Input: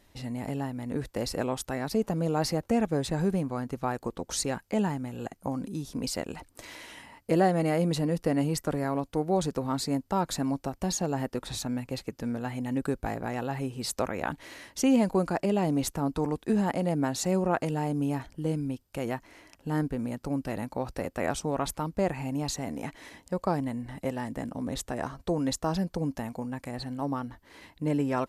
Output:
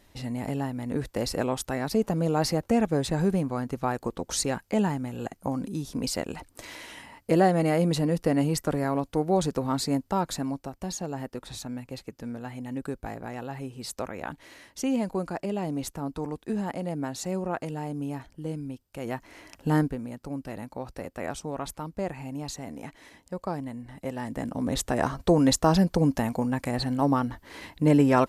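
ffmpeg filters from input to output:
-af "volume=26dB,afade=t=out:st=9.96:d=0.71:silence=0.473151,afade=t=in:st=18.98:d=0.7:silence=0.266073,afade=t=out:st=19.68:d=0.32:silence=0.266073,afade=t=in:st=23.98:d=1.13:silence=0.251189"

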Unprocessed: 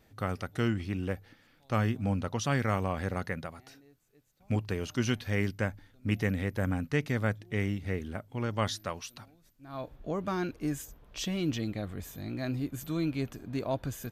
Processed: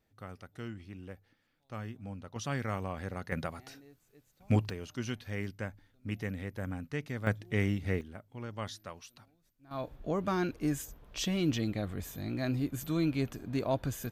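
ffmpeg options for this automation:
-af "asetnsamples=n=441:p=0,asendcmd='2.36 volume volume -6dB;3.32 volume volume 3dB;4.7 volume volume -7.5dB;7.27 volume volume 1dB;8.01 volume volume -9dB;9.71 volume volume 1dB',volume=-13dB"

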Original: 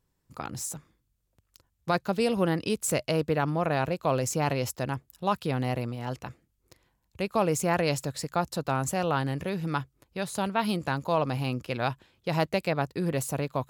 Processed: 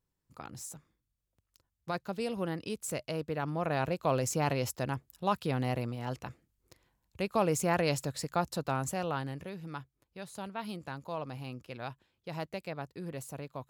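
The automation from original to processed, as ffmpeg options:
-af "volume=-3dB,afade=t=in:st=3.31:d=0.63:silence=0.501187,afade=t=out:st=8.48:d=1.1:silence=0.354813"

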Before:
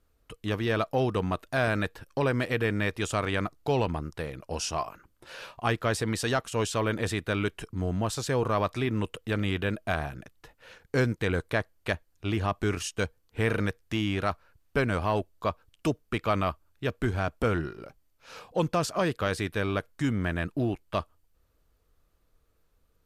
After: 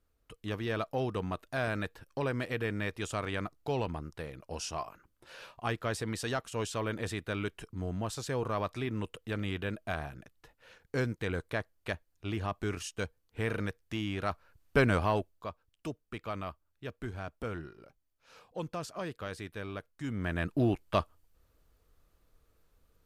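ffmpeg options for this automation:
-af "volume=14dB,afade=t=in:st=14.18:d=0.67:silence=0.398107,afade=t=out:st=14.85:d=0.61:silence=0.223872,afade=t=in:st=20.02:d=0.66:silence=0.237137"

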